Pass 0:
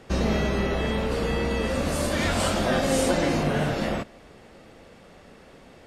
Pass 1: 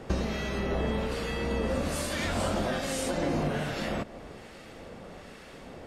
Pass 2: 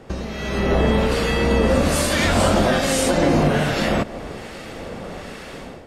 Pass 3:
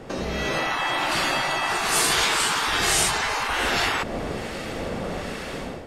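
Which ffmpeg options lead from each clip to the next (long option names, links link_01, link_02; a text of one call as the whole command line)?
ffmpeg -i in.wav -filter_complex "[0:a]acompressor=threshold=-31dB:ratio=6,acrossover=split=1300[link_01][link_02];[link_01]aeval=exprs='val(0)*(1-0.5/2+0.5/2*cos(2*PI*1.2*n/s))':channel_layout=same[link_03];[link_02]aeval=exprs='val(0)*(1-0.5/2-0.5/2*cos(2*PI*1.2*n/s))':channel_layout=same[link_04];[link_03][link_04]amix=inputs=2:normalize=0,volume=6dB" out.wav
ffmpeg -i in.wav -af "dynaudnorm=framelen=350:gausssize=3:maxgain=12.5dB" out.wav
ffmpeg -i in.wav -af "afftfilt=real='re*lt(hypot(re,im),0.251)':imag='im*lt(hypot(re,im),0.251)':win_size=1024:overlap=0.75,volume=3dB" out.wav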